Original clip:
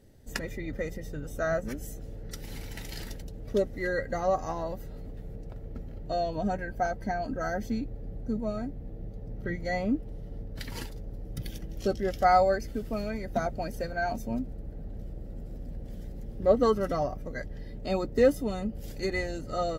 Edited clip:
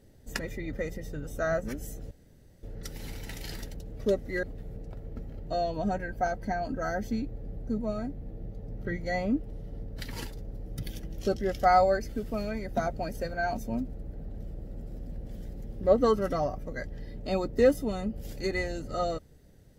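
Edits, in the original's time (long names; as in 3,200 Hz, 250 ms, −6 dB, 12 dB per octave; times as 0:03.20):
0:02.11: splice in room tone 0.52 s
0:03.91–0:05.02: remove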